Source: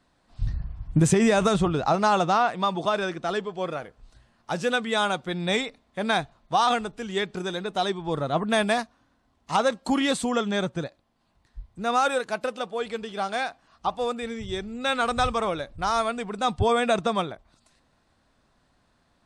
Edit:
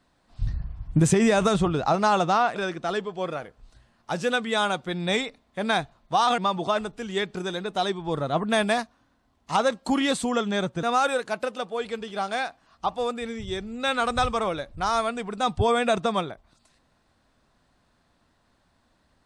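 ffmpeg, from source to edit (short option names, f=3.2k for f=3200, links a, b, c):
-filter_complex "[0:a]asplit=5[a][b][c][d][e];[a]atrim=end=2.562[f];[b]atrim=start=2.958:end=6.782[g];[c]atrim=start=2.558:end=2.962[h];[d]atrim=start=6.778:end=10.832[i];[e]atrim=start=11.838[j];[f][g]acrossfade=d=0.004:c1=hsin:c2=hsin[k];[k][h]acrossfade=d=0.004:c1=hsin:c2=hsin[l];[l][i]acrossfade=d=0.004:c1=hsin:c2=hsin[m];[m][j]acrossfade=d=0.004:c1=hsin:c2=hsin"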